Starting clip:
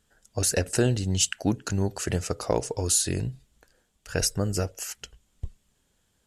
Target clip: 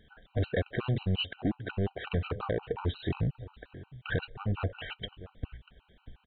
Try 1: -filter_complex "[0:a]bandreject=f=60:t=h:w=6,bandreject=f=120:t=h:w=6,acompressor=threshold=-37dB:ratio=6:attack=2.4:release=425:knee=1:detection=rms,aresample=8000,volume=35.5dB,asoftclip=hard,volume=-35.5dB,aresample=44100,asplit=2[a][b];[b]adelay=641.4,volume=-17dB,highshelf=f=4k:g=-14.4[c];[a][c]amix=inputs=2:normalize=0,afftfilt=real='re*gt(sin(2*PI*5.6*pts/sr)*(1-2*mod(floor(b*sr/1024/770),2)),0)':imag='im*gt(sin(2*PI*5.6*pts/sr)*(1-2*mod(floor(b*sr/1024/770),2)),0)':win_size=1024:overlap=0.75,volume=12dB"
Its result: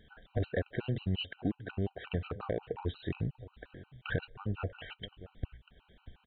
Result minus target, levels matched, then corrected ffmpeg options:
compressor: peak gain reduction +6 dB
-filter_complex "[0:a]bandreject=f=60:t=h:w=6,bandreject=f=120:t=h:w=6,acompressor=threshold=-29.5dB:ratio=6:attack=2.4:release=425:knee=1:detection=rms,aresample=8000,volume=35.5dB,asoftclip=hard,volume=-35.5dB,aresample=44100,asplit=2[a][b];[b]adelay=641.4,volume=-17dB,highshelf=f=4k:g=-14.4[c];[a][c]amix=inputs=2:normalize=0,afftfilt=real='re*gt(sin(2*PI*5.6*pts/sr)*(1-2*mod(floor(b*sr/1024/770),2)),0)':imag='im*gt(sin(2*PI*5.6*pts/sr)*(1-2*mod(floor(b*sr/1024/770),2)),0)':win_size=1024:overlap=0.75,volume=12dB"

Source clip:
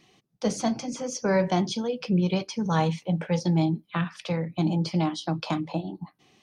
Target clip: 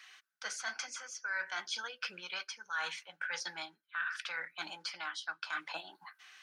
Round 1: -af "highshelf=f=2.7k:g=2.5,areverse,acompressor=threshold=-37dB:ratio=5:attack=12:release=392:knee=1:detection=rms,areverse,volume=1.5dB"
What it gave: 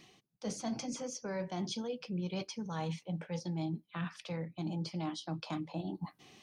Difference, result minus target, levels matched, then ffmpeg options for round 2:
2000 Hz band -14.5 dB
-af "highpass=f=1.5k:t=q:w=9.3,highshelf=f=2.7k:g=2.5,areverse,acompressor=threshold=-37dB:ratio=5:attack=12:release=392:knee=1:detection=rms,areverse,volume=1.5dB"

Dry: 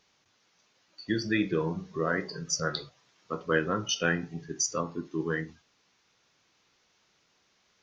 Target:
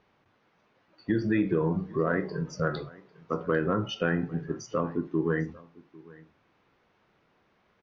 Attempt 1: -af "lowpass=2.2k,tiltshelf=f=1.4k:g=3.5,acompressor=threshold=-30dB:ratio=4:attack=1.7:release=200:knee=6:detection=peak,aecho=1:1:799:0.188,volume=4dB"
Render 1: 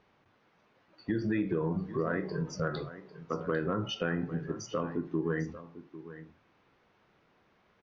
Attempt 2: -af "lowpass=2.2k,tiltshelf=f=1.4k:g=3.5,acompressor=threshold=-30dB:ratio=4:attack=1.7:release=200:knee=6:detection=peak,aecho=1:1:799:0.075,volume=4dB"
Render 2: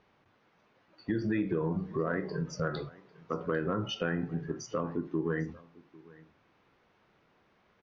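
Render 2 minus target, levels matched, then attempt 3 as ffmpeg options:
compressor: peak gain reduction +5.5 dB
-af "lowpass=2.2k,tiltshelf=f=1.4k:g=3.5,acompressor=threshold=-23dB:ratio=4:attack=1.7:release=200:knee=6:detection=peak,aecho=1:1:799:0.075,volume=4dB"

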